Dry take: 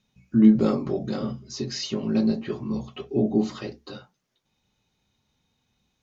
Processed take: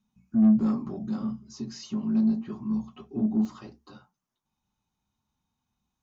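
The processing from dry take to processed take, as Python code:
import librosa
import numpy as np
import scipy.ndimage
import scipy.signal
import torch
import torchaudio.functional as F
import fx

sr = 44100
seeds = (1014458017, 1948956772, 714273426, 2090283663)

y = fx.graphic_eq(x, sr, hz=(125, 500, 1000, 2000, 4000), db=(-3, -11, 7, -8, -7))
y = 10.0 ** (-18.5 / 20.0) * np.tanh(y / 10.0 ** (-18.5 / 20.0))
y = fx.peak_eq(y, sr, hz=210.0, db=fx.steps((0.0, 11.0), (3.45, 2.0)), octaves=0.4)
y = y * librosa.db_to_amplitude(-6.0)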